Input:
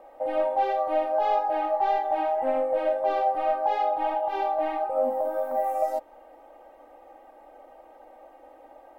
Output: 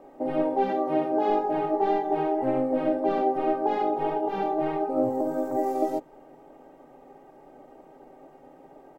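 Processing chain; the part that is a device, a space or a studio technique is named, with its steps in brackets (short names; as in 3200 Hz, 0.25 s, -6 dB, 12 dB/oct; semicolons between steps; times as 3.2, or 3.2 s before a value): 0.69–1.3 HPF 230 Hz 12 dB/oct; octave pedal (harmoniser -12 st -1 dB); gain -2.5 dB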